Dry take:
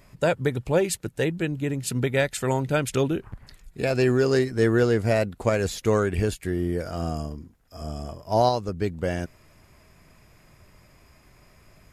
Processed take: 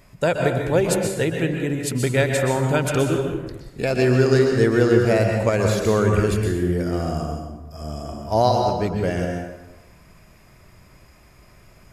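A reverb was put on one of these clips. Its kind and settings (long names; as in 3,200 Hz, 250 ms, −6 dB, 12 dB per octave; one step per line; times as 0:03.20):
dense smooth reverb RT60 1.1 s, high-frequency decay 0.6×, pre-delay 110 ms, DRR 2 dB
level +2 dB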